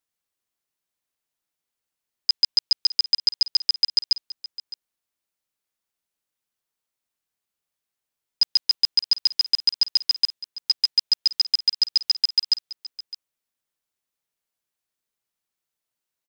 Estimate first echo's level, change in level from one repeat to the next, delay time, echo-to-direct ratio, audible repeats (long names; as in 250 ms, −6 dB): −17.0 dB, repeats not evenly spaced, 611 ms, −17.0 dB, 1